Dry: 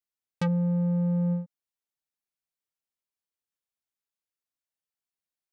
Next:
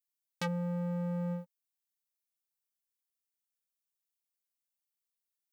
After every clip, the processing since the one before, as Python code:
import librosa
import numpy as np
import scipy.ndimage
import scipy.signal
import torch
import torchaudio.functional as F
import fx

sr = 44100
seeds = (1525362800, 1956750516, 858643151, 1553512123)

y = fx.tilt_eq(x, sr, slope=4.0)
y = fx.leveller(y, sr, passes=2)
y = y * 10.0 ** (-7.0 / 20.0)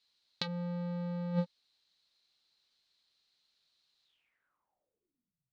y = fx.over_compress(x, sr, threshold_db=-39.0, ratio=-0.5)
y = fx.filter_sweep_lowpass(y, sr, from_hz=4100.0, to_hz=130.0, start_s=4.04, end_s=5.47, q=7.6)
y = y * 10.0 ** (6.0 / 20.0)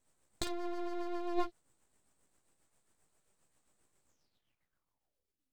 y = fx.room_early_taps(x, sr, ms=(15, 53), db=(-4.5, -13.0))
y = fx.rotary(y, sr, hz=7.5)
y = np.abs(y)
y = y * 10.0 ** (4.0 / 20.0)